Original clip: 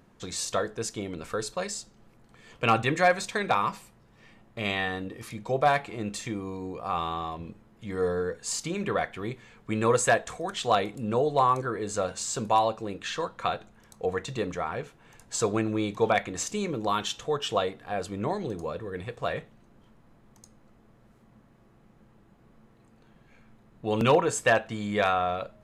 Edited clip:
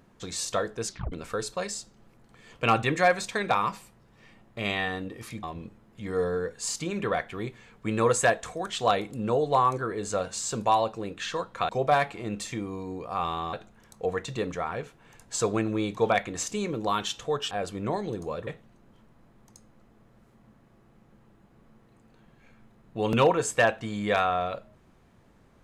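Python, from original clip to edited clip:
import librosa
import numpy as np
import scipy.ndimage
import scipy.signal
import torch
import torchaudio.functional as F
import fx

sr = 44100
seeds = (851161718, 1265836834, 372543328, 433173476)

y = fx.edit(x, sr, fx.tape_stop(start_s=0.87, length_s=0.25),
    fx.move(start_s=5.43, length_s=1.84, to_s=13.53),
    fx.cut(start_s=17.51, length_s=0.37),
    fx.cut(start_s=18.84, length_s=0.51), tone=tone)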